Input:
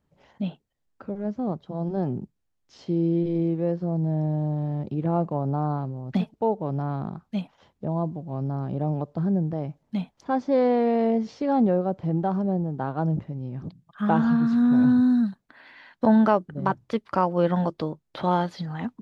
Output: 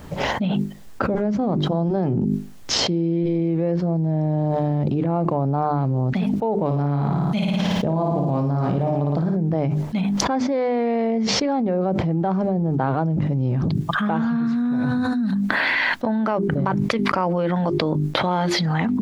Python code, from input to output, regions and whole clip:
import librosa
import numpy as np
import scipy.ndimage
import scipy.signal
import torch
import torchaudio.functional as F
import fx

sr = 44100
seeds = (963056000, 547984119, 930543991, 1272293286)

y = fx.chain(x, sr, fx.high_shelf(hz=3700.0, db=6.5),
    fx.doubler(ms=28.0, db=-14.0),
    fx.room_flutter(wall_m=9.6, rt60_s=0.76), at=(6.65, 9.37))
y = fx.hum_notches(y, sr, base_hz=50, count=8)
y = fx.dynamic_eq(y, sr, hz=2200.0, q=4.0, threshold_db=-57.0, ratio=4.0, max_db=7)
y = fx.env_flatten(y, sr, amount_pct=100)
y = y * librosa.db_to_amplitude(-5.0)